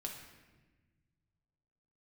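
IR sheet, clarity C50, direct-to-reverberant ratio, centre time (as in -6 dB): 5.0 dB, 0.0 dB, 40 ms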